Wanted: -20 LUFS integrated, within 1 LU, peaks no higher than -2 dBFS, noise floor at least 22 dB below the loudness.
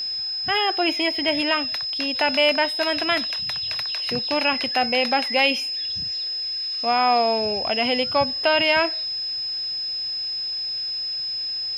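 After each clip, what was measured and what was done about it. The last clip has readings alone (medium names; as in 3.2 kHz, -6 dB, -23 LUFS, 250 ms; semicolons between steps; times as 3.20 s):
steady tone 5.1 kHz; tone level -25 dBFS; loudness -21.5 LUFS; peak level -6.0 dBFS; loudness target -20.0 LUFS
-> band-stop 5.1 kHz, Q 30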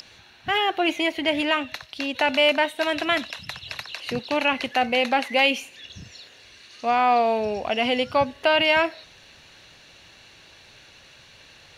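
steady tone not found; loudness -22.5 LUFS; peak level -7.0 dBFS; loudness target -20.0 LUFS
-> trim +2.5 dB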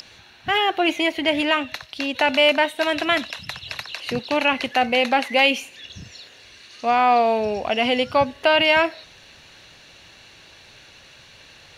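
loudness -20.0 LUFS; peak level -4.5 dBFS; noise floor -48 dBFS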